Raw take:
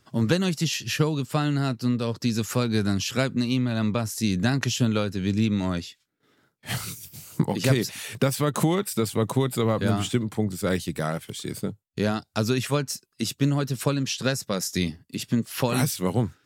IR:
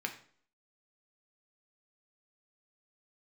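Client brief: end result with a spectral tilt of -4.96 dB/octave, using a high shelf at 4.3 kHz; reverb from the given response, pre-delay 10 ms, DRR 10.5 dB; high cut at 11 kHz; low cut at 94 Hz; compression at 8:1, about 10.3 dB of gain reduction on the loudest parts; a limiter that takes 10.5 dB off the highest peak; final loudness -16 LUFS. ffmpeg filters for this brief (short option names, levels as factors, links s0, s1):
-filter_complex "[0:a]highpass=94,lowpass=11000,highshelf=f=4300:g=-4.5,acompressor=threshold=0.0398:ratio=8,alimiter=limit=0.0631:level=0:latency=1,asplit=2[s0][s1];[1:a]atrim=start_sample=2205,adelay=10[s2];[s1][s2]afir=irnorm=-1:irlink=0,volume=0.211[s3];[s0][s3]amix=inputs=2:normalize=0,volume=8.41"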